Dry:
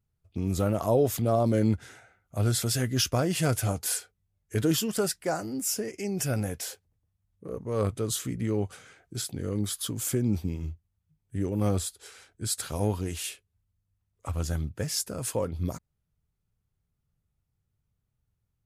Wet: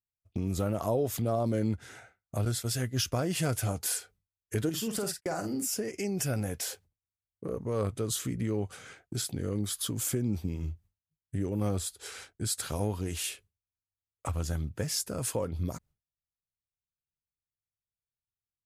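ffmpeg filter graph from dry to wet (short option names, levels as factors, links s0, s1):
-filter_complex "[0:a]asettb=1/sr,asplit=3[s0][s1][s2];[s0]atrim=end=2.454[s3];[s1]atrim=start=2.45:end=3.08,asetpts=PTS-STARTPTS,afade=t=in:d=0.004:c=qsin,afade=t=out:st=0.626:d=0.004:c=qsin,asubboost=boost=9:cutoff=120,agate=range=0.0224:threshold=0.0562:ratio=3:release=100:detection=peak[s4];[s2]atrim=start=3.076[s5];[s3][s4]acrossfade=d=0.004:c1=hsin:c2=qsin[s6];[s6][s5]acrossfade=d=0.004:c1=qsin:c2=hsin,asettb=1/sr,asplit=3[s7][s8][s9];[s7]atrim=end=4.694[s10];[s8]atrim=start=4.69:end=5.73,asetpts=PTS-STARTPTS,afade=t=in:d=0.004:c=qsin,afade=t=out:st=1.036:d=0.004:c=qsin,agate=range=0.00794:threshold=0.01:ratio=16:release=100:detection=peak,acompressor=threshold=0.0398:ratio=5:attack=3.2:release=140:knee=1:detection=peak,asplit=2[s11][s12];[s12]adelay=48,volume=0.398[s13];[s11][s13]amix=inputs=2:normalize=0,atrim=end_sample=45864[s14];[s9]atrim=start=5.726[s15];[s10][s14]acrossfade=d=0.004:c1=hsin:c2=qsin[s16];[s16][s15]acrossfade=d=0.004:c1=qsin:c2=hsin,agate=range=0.0224:threshold=0.00316:ratio=3:detection=peak,acompressor=threshold=0.00631:ratio=2,volume=2.37"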